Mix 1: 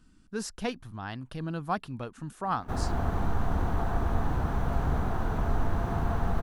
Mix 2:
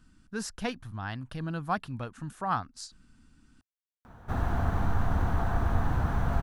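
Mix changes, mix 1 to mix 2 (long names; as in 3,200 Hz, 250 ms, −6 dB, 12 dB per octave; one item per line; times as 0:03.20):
background: entry +1.60 s
master: add graphic EQ with 15 bands 100 Hz +4 dB, 400 Hz −4 dB, 1,600 Hz +3 dB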